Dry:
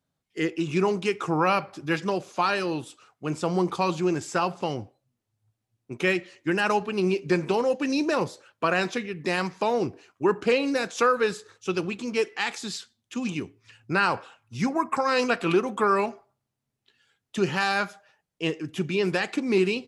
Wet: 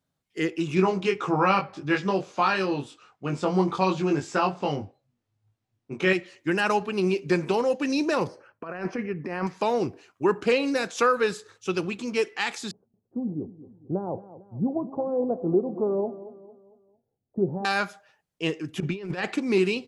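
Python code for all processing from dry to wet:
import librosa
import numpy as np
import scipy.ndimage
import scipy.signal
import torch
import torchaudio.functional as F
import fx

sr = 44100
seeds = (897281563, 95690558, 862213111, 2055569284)

y = fx.chain(x, sr, fx.air_absorb(metres=75.0),
    fx.doubler(ms=21.0, db=-3.0), at=(0.75, 6.13))
y = fx.chain(y, sr, fx.gate_hold(open_db=-47.0, close_db=-51.0, hold_ms=71.0, range_db=-21, attack_ms=1.4, release_ms=100.0),
    fx.over_compress(threshold_db=-28.0, ratio=-0.5),
    fx.moving_average(points=12), at=(8.27, 9.47))
y = fx.chain(y, sr, fx.steep_lowpass(hz=720.0, slope=36),
    fx.echo_feedback(ms=226, feedback_pct=43, wet_db=-15.5), at=(12.71, 17.65))
y = fx.chain(y, sr, fx.lowpass(hz=2700.0, slope=6),
    fx.low_shelf(hz=130.0, db=3.0),
    fx.over_compress(threshold_db=-29.0, ratio=-0.5), at=(18.8, 19.34))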